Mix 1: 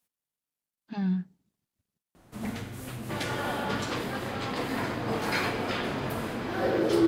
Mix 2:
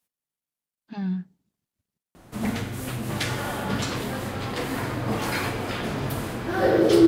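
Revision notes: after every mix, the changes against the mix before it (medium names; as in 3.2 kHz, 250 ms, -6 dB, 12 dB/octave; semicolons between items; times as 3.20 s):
first sound +7.5 dB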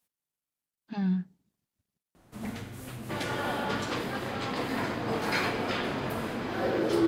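first sound -10.0 dB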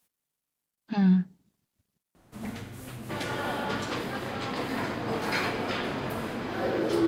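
speech +6.5 dB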